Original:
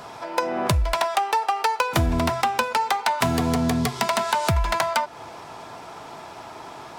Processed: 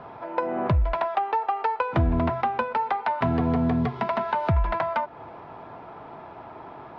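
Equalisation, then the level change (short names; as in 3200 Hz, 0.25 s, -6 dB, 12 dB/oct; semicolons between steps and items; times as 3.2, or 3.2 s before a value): LPF 1600 Hz 6 dB/oct; air absorption 330 m; 0.0 dB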